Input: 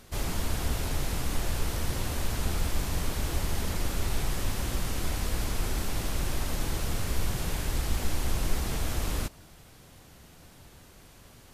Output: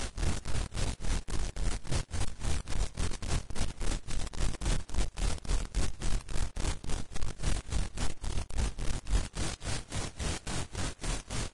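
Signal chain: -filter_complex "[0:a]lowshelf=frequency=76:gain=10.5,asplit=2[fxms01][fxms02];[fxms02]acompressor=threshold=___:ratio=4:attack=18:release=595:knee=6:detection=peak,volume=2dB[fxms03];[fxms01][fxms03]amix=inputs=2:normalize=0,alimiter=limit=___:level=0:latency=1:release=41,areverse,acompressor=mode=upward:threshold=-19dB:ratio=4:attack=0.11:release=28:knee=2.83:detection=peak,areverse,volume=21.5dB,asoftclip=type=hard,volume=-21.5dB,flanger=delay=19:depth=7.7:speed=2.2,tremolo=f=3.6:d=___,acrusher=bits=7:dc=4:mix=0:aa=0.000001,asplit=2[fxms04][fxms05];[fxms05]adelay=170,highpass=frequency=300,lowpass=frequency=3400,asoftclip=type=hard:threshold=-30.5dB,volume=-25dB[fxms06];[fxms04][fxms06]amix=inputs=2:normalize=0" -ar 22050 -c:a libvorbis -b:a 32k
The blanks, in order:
-29dB, -12.5dB, 0.92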